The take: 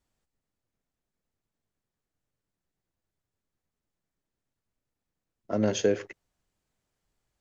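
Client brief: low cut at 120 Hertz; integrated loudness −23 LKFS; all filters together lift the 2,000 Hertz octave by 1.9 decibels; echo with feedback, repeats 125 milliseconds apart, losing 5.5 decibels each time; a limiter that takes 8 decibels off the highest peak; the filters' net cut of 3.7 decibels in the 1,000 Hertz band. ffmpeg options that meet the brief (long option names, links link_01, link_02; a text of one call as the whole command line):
ffmpeg -i in.wav -af "highpass=120,equalizer=frequency=1000:width_type=o:gain=-8,equalizer=frequency=2000:width_type=o:gain=5.5,alimiter=limit=-19.5dB:level=0:latency=1,aecho=1:1:125|250|375|500|625|750|875:0.531|0.281|0.149|0.079|0.0419|0.0222|0.0118,volume=8.5dB" out.wav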